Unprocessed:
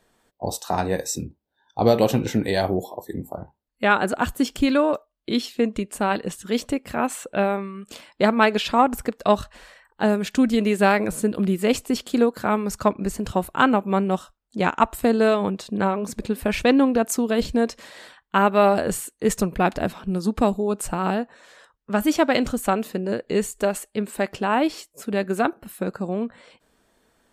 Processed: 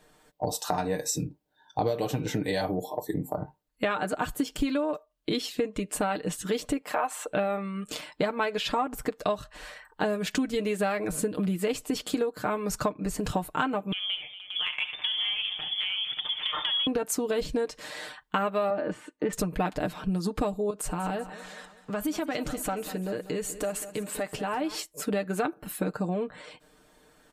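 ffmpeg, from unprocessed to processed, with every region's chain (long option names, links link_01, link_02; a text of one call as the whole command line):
ffmpeg -i in.wav -filter_complex "[0:a]asettb=1/sr,asplit=3[link_01][link_02][link_03];[link_01]atrim=end=6.814[link_04];[link_02]atrim=start=6.81:end=7.27,asetpts=PTS-STARTPTS,afade=type=in:duration=0.004:curve=qsin,afade=type=out:start_time=0.456:duration=0.004:curve=qsin,highpass=440,equalizer=frequency=890:width=1.2:gain=7[link_05];[link_03]atrim=start=7.266[link_06];[link_04][link_05]acrossfade=duration=0.004:curve1=hsin:curve2=qsin[link_07];[link_07][link_06]acrossfade=duration=0.004:curve1=qsin:curve2=hsin,asettb=1/sr,asplit=3[link_08][link_09][link_10];[link_08]atrim=end=13.924[link_11];[link_09]atrim=start=13.92:end=16.87,asetpts=PTS-STARTPTS,afade=type=in:duration=0.004:curve=qsin,afade=type=out:start_time=2.946:duration=0.004:curve=qsin,lowpass=frequency=3100:width_type=q:width=0.5098,lowpass=frequency=3100:width_type=q:width=0.6013,lowpass=frequency=3100:width_type=q:width=0.9,lowpass=frequency=3100:width_type=q:width=2.563,afreqshift=-3600,acompressor=threshold=-32dB:ratio=3:attack=3.2:release=140:knee=1:detection=peak,aecho=1:1:68|235|475|579:0.251|0.168|0.15|0.299,atrim=end_sample=130095[link_12];[link_10]atrim=start=16.866[link_13];[link_11][link_12]acrossfade=duration=0.004:curve1=hsin:curve2=qsin[link_14];[link_14][link_13]acrossfade=duration=0.004:curve1=qsin:curve2=hsin,asettb=1/sr,asplit=3[link_15][link_16][link_17];[link_15]atrim=end=18.704[link_18];[link_16]atrim=start=18.7:end=19.33,asetpts=PTS-STARTPTS,afade=type=in:duration=0.004:curve=qsin,afade=type=out:start_time=0.626:duration=0.004:curve=qsin,highpass=140,lowpass=2100,aecho=1:1:3.4:0.45,atrim=end_sample=27783[link_19];[link_17]atrim=start=19.326[link_20];[link_18][link_19]acrossfade=duration=0.004:curve1=hsin:curve2=qsin[link_21];[link_21][link_20]acrossfade=duration=0.004:curve1=qsin:curve2=hsin,asettb=1/sr,asplit=3[link_22][link_23][link_24];[link_22]atrim=end=20.704[link_25];[link_23]atrim=start=20.7:end=24.75,asetpts=PTS-STARTPTS,afade=type=in:duration=0.004:curve=qsin,afade=type=out:start_time=4.046:duration=0.004:curve=qsin,acompressor=threshold=-35dB:ratio=2.5:attack=3.2:release=140:knee=1:detection=peak,aecho=1:1:193|386|579|772|965:0.178|0.0889|0.0445|0.0222|0.0111,atrim=end_sample=178605[link_26];[link_24]atrim=start=24.746[link_27];[link_25][link_26]acrossfade=duration=0.004:curve1=hsin:curve2=qsin[link_28];[link_28][link_27]acrossfade=duration=0.004:curve1=qsin:curve2=hsin,aecho=1:1:6.6:0.66,acompressor=threshold=-28dB:ratio=6,volume=2.5dB" out.wav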